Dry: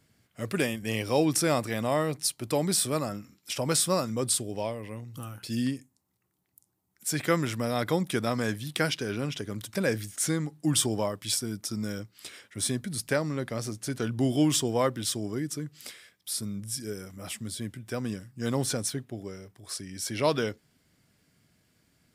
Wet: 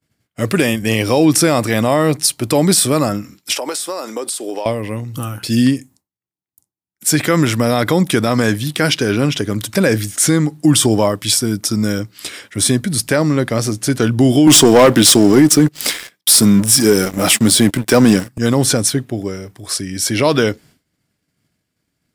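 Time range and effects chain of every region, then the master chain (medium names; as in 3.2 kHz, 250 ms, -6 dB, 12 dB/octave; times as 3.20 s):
3.55–4.66 s: high-pass 330 Hz 24 dB/octave + peaking EQ 840 Hz +5 dB 0.27 oct + compression 16:1, threshold -34 dBFS
14.47–18.38 s: high-pass 160 Hz + waveshaping leveller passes 3
whole clip: expander -54 dBFS; peaking EQ 300 Hz +3.5 dB 0.21 oct; loudness maximiser +17 dB; trim -1.5 dB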